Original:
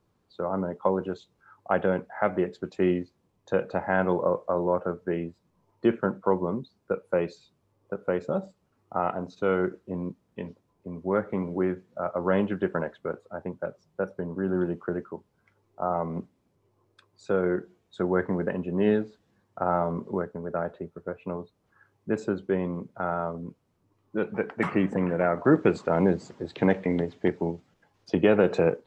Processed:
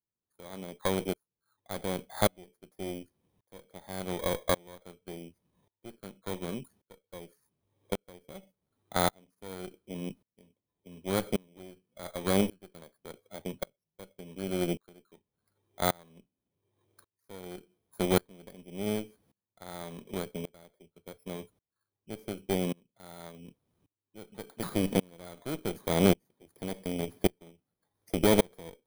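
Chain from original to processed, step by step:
samples in bit-reversed order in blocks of 16 samples
harmonic generator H 6 −15 dB, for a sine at −6.5 dBFS
tremolo with a ramp in dB swelling 0.88 Hz, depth 31 dB

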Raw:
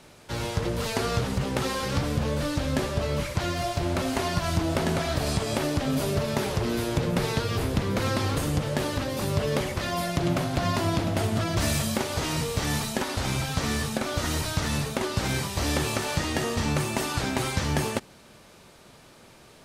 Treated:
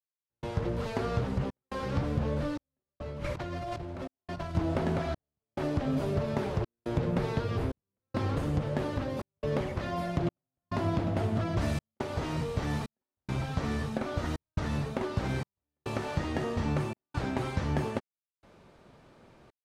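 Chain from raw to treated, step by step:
low-pass filter 1,200 Hz 6 dB per octave
0:02.83–0:04.55: compressor whose output falls as the input rises −34 dBFS, ratio −1
gate pattern "..xxxxx.xxxx" 70 BPM −60 dB
level −3 dB

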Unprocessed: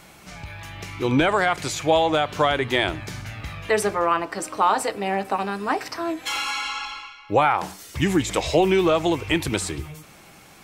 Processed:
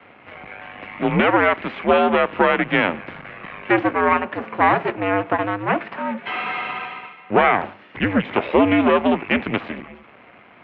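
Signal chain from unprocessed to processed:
half-wave rectification
single-sideband voice off tune −91 Hz 250–2,800 Hz
level +8 dB

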